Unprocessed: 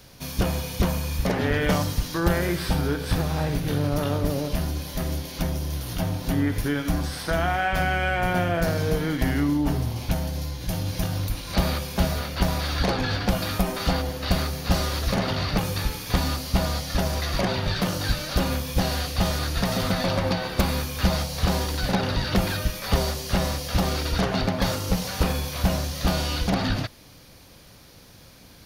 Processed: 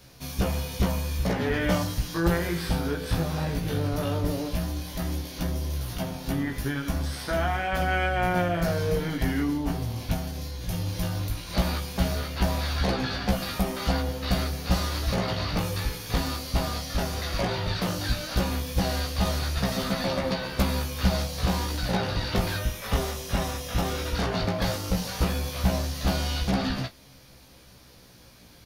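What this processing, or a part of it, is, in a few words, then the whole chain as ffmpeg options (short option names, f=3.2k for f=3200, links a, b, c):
double-tracked vocal: -filter_complex "[0:a]asettb=1/sr,asplit=3[a][b][c];[a]atrim=end=22.584[d];[b]atrim=start=22.58:end=24.15,asetpts=PTS-STARTPTS,afade=t=in:d=0.004:c=qsin,afade=t=out:st=1.566:d=0.004:c=qsin,bandreject=f=4.5k:w=6.1[e];[c]atrim=start=24.146[f];[d][e]acrossfade=d=0.004:c1=hsin:c2=qsin[g];[g][f]acrossfade=d=0.004:c1=qsin:c2=hsin,asplit=2[h][i];[i]adelay=30,volume=-13.5dB[j];[h][j]amix=inputs=2:normalize=0,flanger=delay=15:depth=3.3:speed=0.15"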